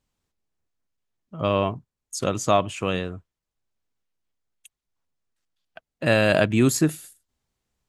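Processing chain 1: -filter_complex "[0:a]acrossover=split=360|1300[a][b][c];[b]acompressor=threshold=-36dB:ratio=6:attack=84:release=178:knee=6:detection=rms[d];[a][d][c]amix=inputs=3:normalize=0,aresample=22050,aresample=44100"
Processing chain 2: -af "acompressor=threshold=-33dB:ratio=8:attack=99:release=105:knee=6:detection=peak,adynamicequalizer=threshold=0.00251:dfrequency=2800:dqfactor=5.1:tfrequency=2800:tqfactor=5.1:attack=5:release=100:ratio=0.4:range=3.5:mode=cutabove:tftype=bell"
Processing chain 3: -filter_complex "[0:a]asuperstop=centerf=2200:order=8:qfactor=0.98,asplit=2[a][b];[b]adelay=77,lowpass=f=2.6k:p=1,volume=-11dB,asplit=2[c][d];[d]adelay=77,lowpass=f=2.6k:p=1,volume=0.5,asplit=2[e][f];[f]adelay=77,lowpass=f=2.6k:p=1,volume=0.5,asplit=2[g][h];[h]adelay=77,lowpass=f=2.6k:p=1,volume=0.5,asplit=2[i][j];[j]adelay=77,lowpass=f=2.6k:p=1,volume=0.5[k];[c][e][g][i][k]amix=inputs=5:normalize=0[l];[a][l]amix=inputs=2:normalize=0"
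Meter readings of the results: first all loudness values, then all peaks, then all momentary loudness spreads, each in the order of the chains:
-25.5, -31.5, -23.5 LUFS; -9.5, -11.5, -5.5 dBFS; 18, 14, 15 LU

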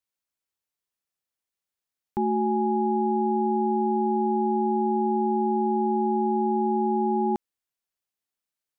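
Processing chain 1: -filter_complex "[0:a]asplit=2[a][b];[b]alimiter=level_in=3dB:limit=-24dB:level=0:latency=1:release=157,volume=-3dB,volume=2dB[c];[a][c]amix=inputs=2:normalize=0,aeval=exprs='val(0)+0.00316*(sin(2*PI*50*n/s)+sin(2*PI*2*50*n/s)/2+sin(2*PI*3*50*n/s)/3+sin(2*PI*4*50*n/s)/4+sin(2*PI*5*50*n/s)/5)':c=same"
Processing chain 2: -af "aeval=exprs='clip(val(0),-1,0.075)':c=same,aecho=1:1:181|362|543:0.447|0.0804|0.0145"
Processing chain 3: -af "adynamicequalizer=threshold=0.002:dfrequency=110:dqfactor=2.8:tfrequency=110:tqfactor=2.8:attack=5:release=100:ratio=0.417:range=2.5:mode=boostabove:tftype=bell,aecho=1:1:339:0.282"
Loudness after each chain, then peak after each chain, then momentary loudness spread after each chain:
-22.0, -24.0, -27.0 LUFS; -13.0, -14.5, -16.0 dBFS; 1, 3, 3 LU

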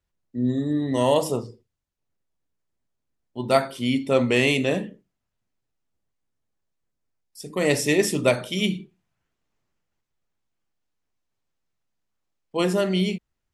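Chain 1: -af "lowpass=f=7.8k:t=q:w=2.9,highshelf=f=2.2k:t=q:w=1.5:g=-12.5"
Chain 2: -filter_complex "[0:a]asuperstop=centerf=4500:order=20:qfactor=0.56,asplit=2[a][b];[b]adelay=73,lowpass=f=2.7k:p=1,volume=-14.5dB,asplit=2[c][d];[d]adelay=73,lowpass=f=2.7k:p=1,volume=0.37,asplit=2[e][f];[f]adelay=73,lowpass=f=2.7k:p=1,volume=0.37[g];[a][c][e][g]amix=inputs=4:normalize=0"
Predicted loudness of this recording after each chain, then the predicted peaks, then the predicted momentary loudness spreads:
-23.5, -24.0 LUFS; -4.5, -5.0 dBFS; 14, 14 LU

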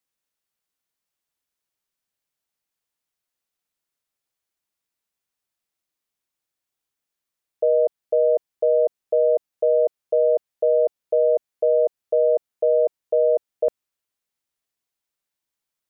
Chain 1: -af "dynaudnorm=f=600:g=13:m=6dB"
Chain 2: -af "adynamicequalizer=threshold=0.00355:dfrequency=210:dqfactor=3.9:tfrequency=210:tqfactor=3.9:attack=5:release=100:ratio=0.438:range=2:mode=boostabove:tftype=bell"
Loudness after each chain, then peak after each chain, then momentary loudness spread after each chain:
-16.0, -21.0 LUFS; -5.5, -11.0 dBFS; 5, 2 LU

